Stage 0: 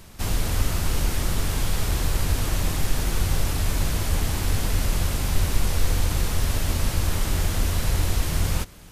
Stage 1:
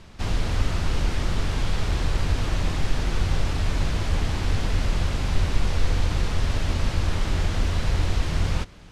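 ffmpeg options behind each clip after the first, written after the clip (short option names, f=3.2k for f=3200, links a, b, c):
-af "lowpass=4.7k"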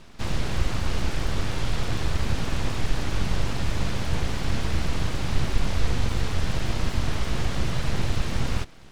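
-af "aeval=exprs='abs(val(0))':c=same"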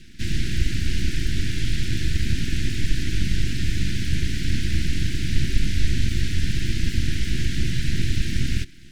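-af "asuperstop=centerf=760:order=12:qfactor=0.62,volume=3dB"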